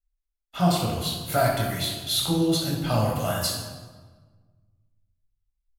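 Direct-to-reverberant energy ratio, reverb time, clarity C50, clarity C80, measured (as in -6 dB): -3.0 dB, 1.5 s, 1.5 dB, 4.5 dB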